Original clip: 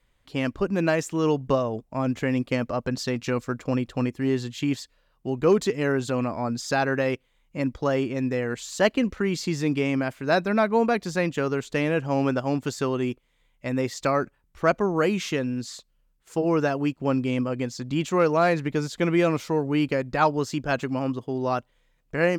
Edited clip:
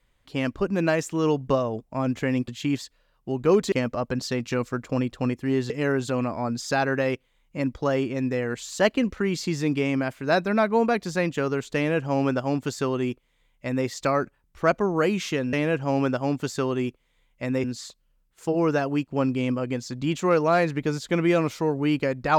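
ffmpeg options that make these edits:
ffmpeg -i in.wav -filter_complex "[0:a]asplit=6[link_01][link_02][link_03][link_04][link_05][link_06];[link_01]atrim=end=2.482[link_07];[link_02]atrim=start=4.458:end=5.702[link_08];[link_03]atrim=start=2.478:end=4.462[link_09];[link_04]atrim=start=5.698:end=15.532[link_10];[link_05]atrim=start=11.758:end=13.872[link_11];[link_06]atrim=start=15.528[link_12];[link_07][link_08]acrossfade=duration=0.004:curve1=hsin:curve2=hsin[link_13];[link_13][link_09]acrossfade=duration=0.004:curve1=hsin:curve2=hsin[link_14];[link_14][link_10]acrossfade=duration=0.004:curve1=hsin:curve2=hsin[link_15];[link_15][link_11]acrossfade=duration=0.004:curve1=hsin:curve2=hsin[link_16];[link_16][link_12]acrossfade=duration=0.004:curve1=hsin:curve2=hsin" out.wav

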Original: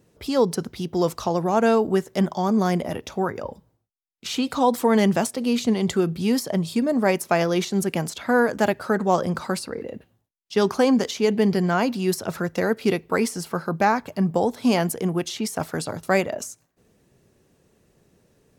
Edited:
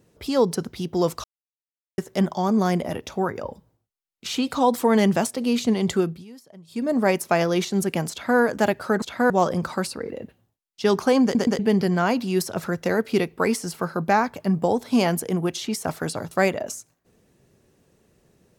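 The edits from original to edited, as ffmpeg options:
ffmpeg -i in.wav -filter_complex "[0:a]asplit=10[link_01][link_02][link_03][link_04][link_05][link_06][link_07][link_08][link_09][link_10];[link_01]atrim=end=1.24,asetpts=PTS-STARTPTS,afade=type=out:start_time=1.236:duration=0.004:curve=hsin[link_11];[link_02]atrim=start=1.24:end=1.98,asetpts=PTS-STARTPTS,volume=0[link_12];[link_03]atrim=start=1.98:end=6.25,asetpts=PTS-STARTPTS,afade=type=in:duration=0.004:curve=hsin,afade=type=out:start_time=4.02:duration=0.25:silence=0.0749894[link_13];[link_04]atrim=start=6.25:end=6.67,asetpts=PTS-STARTPTS,volume=-22.5dB[link_14];[link_05]atrim=start=6.67:end=9.022,asetpts=PTS-STARTPTS,afade=type=in:duration=0.25:silence=0.0749894[link_15];[link_06]atrim=start=8.108:end=8.392[link_16];[link_07]atrim=start=9.018:end=11.072[link_17];[link_08]atrim=start=10.948:end=11.072[link_18];[link_09]atrim=start=10.948:end=11.072[link_19];[link_10]atrim=start=11.308[link_20];[link_11][link_12][link_13][link_14][link_15]concat=n=5:v=0:a=1[link_21];[link_21][link_16]acrossfade=duration=0.004:curve1=hsin:curve2=hsin[link_22];[link_22][link_17]acrossfade=duration=0.004:curve1=hsin:curve2=hsin[link_23];[link_23][link_18]acrossfade=duration=0.004:curve1=hsin:curve2=hsin[link_24];[link_24][link_19]acrossfade=duration=0.004:curve1=hsin:curve2=hsin[link_25];[link_25][link_20]acrossfade=duration=0.004:curve1=hsin:curve2=hsin" out.wav

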